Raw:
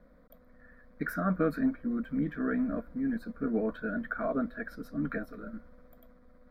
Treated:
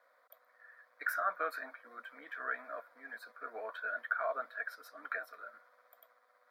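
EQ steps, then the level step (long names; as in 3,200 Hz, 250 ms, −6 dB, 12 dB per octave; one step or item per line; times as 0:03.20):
high-pass filter 730 Hz 24 dB per octave
+2.0 dB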